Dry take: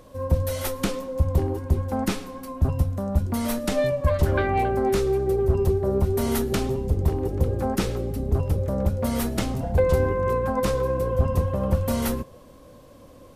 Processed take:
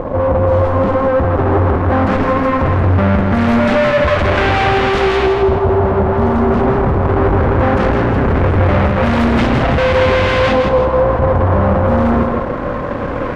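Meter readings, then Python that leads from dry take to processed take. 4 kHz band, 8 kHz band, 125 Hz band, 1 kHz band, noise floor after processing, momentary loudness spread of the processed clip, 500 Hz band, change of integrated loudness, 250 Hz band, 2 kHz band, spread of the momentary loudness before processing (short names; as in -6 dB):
+12.0 dB, n/a, +9.5 dB, +15.0 dB, -20 dBFS, 2 LU, +11.5 dB, +11.0 dB, +12.0 dB, +17.5 dB, 5 LU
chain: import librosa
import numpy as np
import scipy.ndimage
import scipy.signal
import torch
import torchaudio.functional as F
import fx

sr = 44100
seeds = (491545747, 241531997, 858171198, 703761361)

y = fx.fuzz(x, sr, gain_db=48.0, gate_db=-50.0)
y = fx.filter_lfo_lowpass(y, sr, shape='saw_up', hz=0.19, low_hz=840.0, high_hz=3200.0, q=1.1)
y = fx.echo_feedback(y, sr, ms=163, feedback_pct=39, wet_db=-5.5)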